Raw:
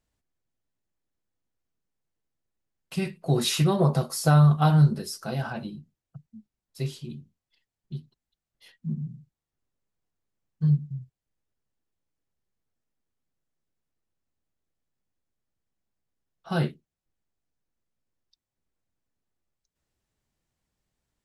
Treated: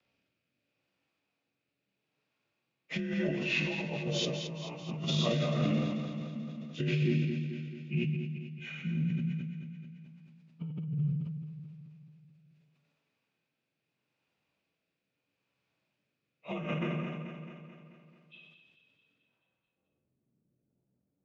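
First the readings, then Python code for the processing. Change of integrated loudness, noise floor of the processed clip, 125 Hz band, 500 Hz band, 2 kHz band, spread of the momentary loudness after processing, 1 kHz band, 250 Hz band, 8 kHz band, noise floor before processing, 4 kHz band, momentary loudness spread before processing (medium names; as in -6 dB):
-9.5 dB, -85 dBFS, -8.5 dB, -5.0 dB, +1.0 dB, 17 LU, -13.5 dB, -4.5 dB, under -10 dB, under -85 dBFS, -2.0 dB, 22 LU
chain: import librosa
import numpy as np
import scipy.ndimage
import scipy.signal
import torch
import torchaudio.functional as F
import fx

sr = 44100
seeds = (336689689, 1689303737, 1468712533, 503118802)

y = fx.partial_stretch(x, sr, pct=87)
y = scipy.signal.sosfilt(scipy.signal.butter(2, 160.0, 'highpass', fs=sr, output='sos'), y)
y = fx.filter_sweep_lowpass(y, sr, from_hz=3700.0, to_hz=340.0, start_s=19.02, end_s=20.04, q=0.84)
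y = fx.rev_plate(y, sr, seeds[0], rt60_s=0.92, hf_ratio=0.9, predelay_ms=0, drr_db=-2.0)
y = fx.over_compress(y, sr, threshold_db=-34.0, ratio=-1.0)
y = fx.peak_eq(y, sr, hz=2500.0, db=11.5, octaves=0.27)
y = fx.rotary(y, sr, hz=0.75)
y = fx.echo_feedback(y, sr, ms=218, feedback_pct=59, wet_db=-9)
y = fx.sustainer(y, sr, db_per_s=38.0)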